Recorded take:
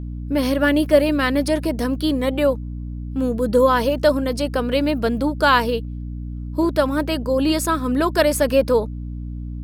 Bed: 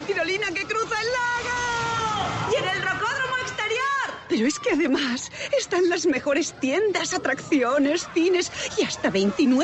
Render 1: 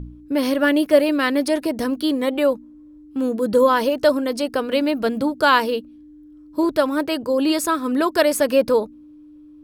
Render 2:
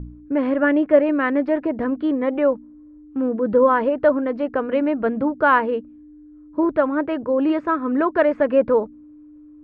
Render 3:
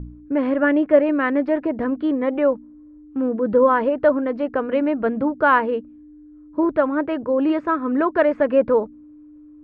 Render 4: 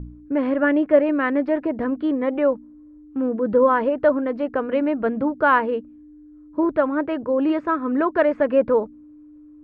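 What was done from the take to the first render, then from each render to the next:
de-hum 60 Hz, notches 4
LPF 2000 Hz 24 dB/oct
nothing audible
gain -1 dB

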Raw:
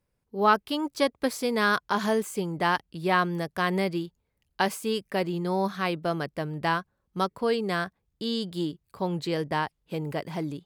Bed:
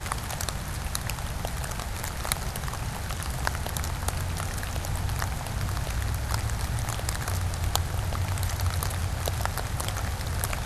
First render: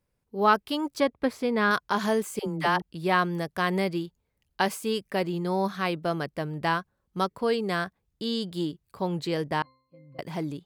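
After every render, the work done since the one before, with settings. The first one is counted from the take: 1–1.71 tone controls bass +3 dB, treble -13 dB; 2.39–2.82 dispersion lows, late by 81 ms, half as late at 430 Hz; 9.62–10.19 octave resonator C, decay 0.58 s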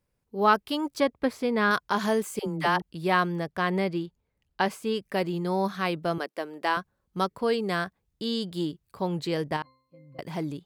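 3.32–5.03 high shelf 5500 Hz -10 dB; 6.18–6.77 HPF 300 Hz 24 dB/oct; 9.56–10.33 compressor 2.5:1, threshold -30 dBFS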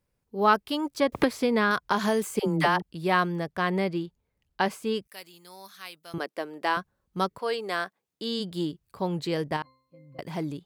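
1.12–2.84 three-band squash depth 100%; 5.07–6.14 pre-emphasis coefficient 0.97; 7.38–8.39 HPF 560 Hz -> 210 Hz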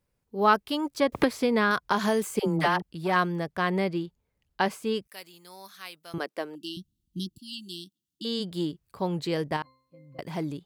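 2.59–3.16 core saturation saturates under 970 Hz; 6.55–8.25 brick-wall FIR band-stop 360–2700 Hz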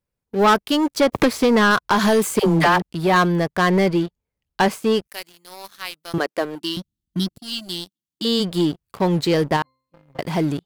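sample leveller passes 3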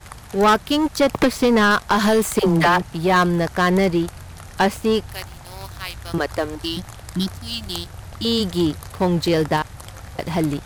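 add bed -7.5 dB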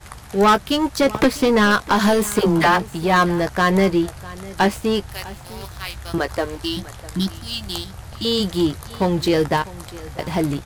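doubler 15 ms -9.5 dB; echo 0.651 s -19.5 dB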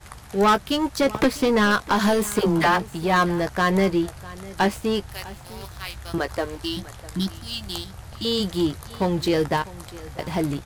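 gain -3.5 dB

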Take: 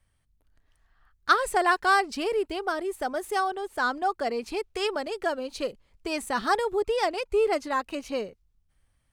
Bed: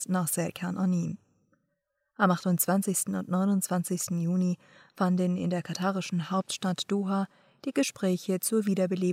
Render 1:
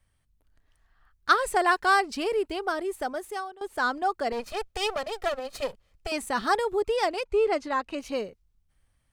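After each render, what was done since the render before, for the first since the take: 2.98–3.61 fade out, to -19.5 dB; 4.32–6.12 minimum comb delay 1.6 ms; 7.24–7.98 air absorption 56 m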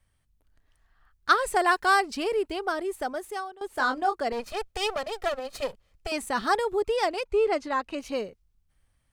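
1.53–2.11 high shelf 9100 Hz +5 dB; 3.72–4.18 doubler 23 ms -6 dB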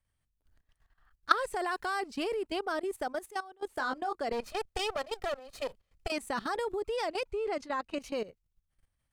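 level quantiser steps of 16 dB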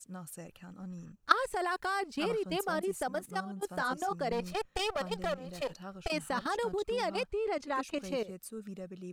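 add bed -17 dB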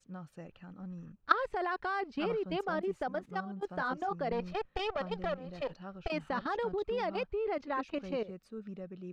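air absorption 230 m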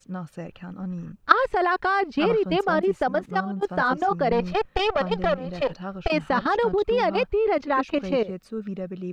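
gain +12 dB; limiter -1 dBFS, peak gain reduction 2 dB

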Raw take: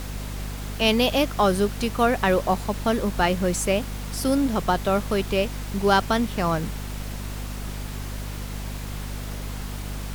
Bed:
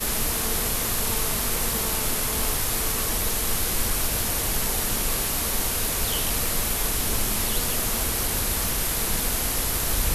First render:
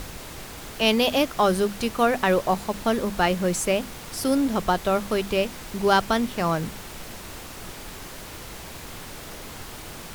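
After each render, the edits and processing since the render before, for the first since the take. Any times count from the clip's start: notches 50/100/150/200/250 Hz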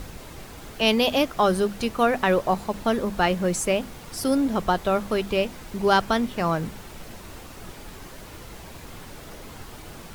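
denoiser 6 dB, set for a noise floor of -40 dBFS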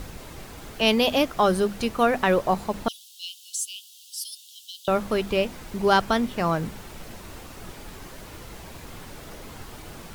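2.88–4.88 steep high-pass 2900 Hz 96 dB/oct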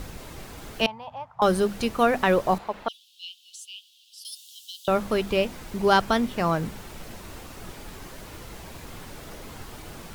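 0.86–1.42 double band-pass 330 Hz, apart 2.9 oct; 2.58–4.25 three-band isolator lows -13 dB, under 450 Hz, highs -16 dB, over 3700 Hz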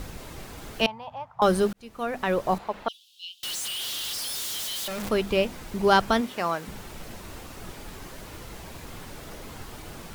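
1.73–2.72 fade in; 3.43–5.09 infinite clipping; 6.2–6.67 HPF 300 Hz -> 990 Hz 6 dB/oct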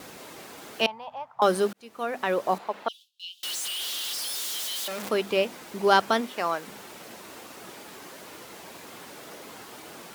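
gate with hold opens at -43 dBFS; HPF 270 Hz 12 dB/oct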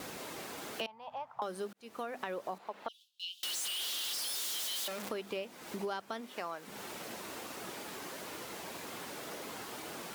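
compressor 6:1, threshold -37 dBFS, peak gain reduction 21 dB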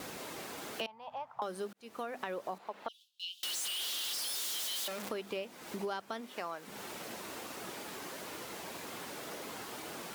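nothing audible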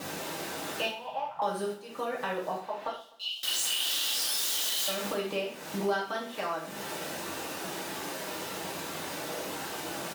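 feedback echo 0.127 s, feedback 46%, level -18 dB; non-linear reverb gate 0.15 s falling, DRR -6 dB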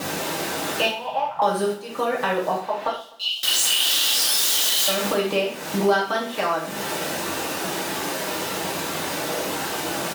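gain +10 dB

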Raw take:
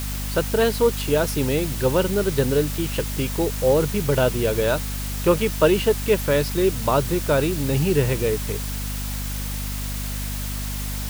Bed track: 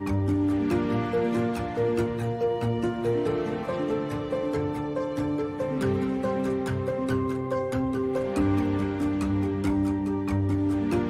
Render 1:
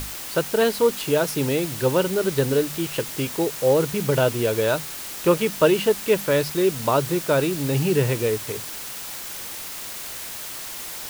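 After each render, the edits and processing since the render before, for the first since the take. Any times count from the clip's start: notches 50/100/150/200/250 Hz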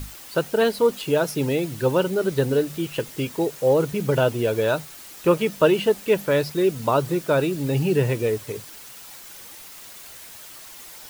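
denoiser 9 dB, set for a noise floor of -34 dBFS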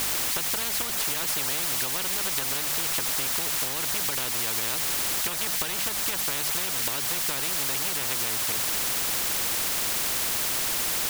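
compressor, threshold -25 dBFS, peak gain reduction 12.5 dB; spectral compressor 10:1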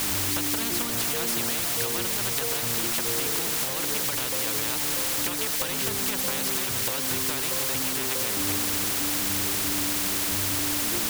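add bed track -10 dB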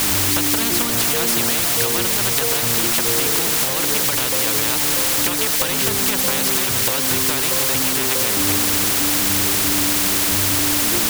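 gain +8.5 dB

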